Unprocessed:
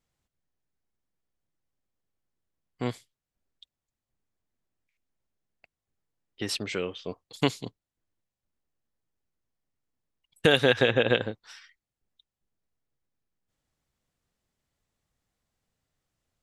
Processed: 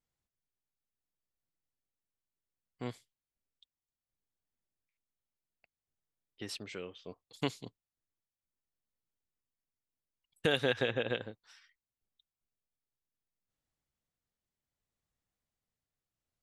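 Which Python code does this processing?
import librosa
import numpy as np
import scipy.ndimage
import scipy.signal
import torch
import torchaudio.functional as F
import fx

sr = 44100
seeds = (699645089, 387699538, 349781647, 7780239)

y = x * (1.0 - 0.3 / 2.0 + 0.3 / 2.0 * np.cos(2.0 * np.pi * 0.66 * (np.arange(len(x)) / sr)))
y = y * librosa.db_to_amplitude(-9.0)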